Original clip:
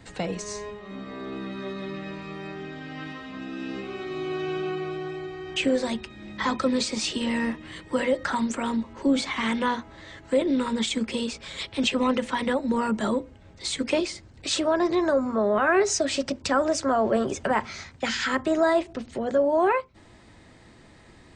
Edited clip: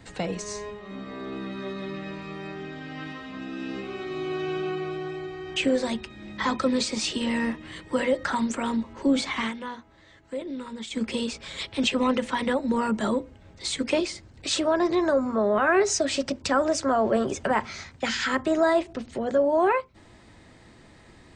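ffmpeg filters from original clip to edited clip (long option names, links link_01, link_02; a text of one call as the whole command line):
ffmpeg -i in.wav -filter_complex "[0:a]asplit=3[link_01][link_02][link_03];[link_01]atrim=end=9.53,asetpts=PTS-STARTPTS,afade=type=out:start_time=9.38:duration=0.15:curve=qsin:silence=0.298538[link_04];[link_02]atrim=start=9.53:end=10.9,asetpts=PTS-STARTPTS,volume=-10.5dB[link_05];[link_03]atrim=start=10.9,asetpts=PTS-STARTPTS,afade=type=in:duration=0.15:curve=qsin:silence=0.298538[link_06];[link_04][link_05][link_06]concat=n=3:v=0:a=1" out.wav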